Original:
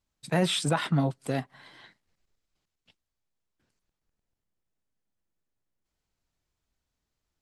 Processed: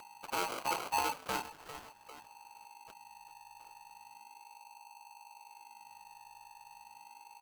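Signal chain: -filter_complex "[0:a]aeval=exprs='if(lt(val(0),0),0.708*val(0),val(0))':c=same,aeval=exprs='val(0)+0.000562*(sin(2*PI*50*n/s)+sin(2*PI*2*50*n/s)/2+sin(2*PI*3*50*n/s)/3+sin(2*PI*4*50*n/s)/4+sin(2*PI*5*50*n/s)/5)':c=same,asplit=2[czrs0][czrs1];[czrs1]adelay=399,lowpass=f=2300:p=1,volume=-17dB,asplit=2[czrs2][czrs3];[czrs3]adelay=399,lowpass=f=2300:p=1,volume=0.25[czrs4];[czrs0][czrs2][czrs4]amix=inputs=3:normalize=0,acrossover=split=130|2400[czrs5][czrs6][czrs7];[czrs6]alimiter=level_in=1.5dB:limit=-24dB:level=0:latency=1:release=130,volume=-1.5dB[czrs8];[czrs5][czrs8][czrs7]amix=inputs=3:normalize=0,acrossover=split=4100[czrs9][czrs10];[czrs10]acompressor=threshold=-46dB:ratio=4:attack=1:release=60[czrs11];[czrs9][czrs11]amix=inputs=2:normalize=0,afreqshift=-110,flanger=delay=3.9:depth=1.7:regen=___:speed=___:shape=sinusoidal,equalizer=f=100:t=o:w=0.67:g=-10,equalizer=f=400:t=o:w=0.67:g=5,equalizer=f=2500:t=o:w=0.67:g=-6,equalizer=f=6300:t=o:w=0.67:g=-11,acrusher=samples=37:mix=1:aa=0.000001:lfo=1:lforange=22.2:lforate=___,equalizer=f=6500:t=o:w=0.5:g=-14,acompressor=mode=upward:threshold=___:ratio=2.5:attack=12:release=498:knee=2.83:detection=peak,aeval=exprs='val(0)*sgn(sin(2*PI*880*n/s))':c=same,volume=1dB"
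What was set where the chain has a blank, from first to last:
-67, 0.69, 0.35, -41dB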